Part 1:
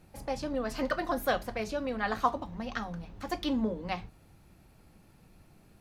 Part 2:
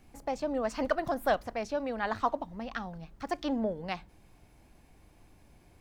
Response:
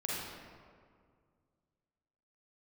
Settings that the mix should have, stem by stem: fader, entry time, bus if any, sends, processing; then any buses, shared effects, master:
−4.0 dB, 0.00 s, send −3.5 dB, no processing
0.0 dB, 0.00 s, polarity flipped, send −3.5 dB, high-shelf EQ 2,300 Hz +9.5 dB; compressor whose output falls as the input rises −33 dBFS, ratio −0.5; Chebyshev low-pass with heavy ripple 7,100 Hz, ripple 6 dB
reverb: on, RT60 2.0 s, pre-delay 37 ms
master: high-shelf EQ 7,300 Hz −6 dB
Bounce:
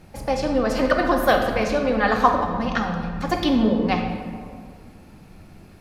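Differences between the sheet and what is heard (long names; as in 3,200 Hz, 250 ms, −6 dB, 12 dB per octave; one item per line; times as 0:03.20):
stem 1 −4.0 dB → +7.0 dB
stem 2 0.0 dB → −7.0 dB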